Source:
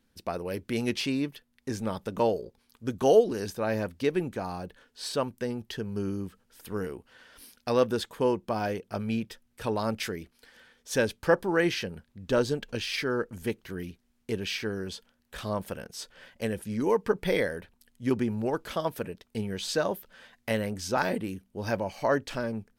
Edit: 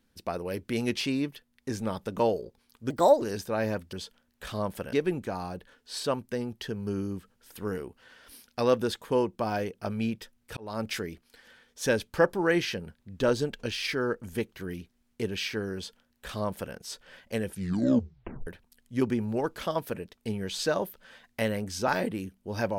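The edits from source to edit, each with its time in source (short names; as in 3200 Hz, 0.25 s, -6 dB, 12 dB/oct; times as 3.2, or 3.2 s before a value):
2.9–3.31 speed 129%
9.66–9.98 fade in
14.84–15.84 copy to 4.02
16.61 tape stop 0.95 s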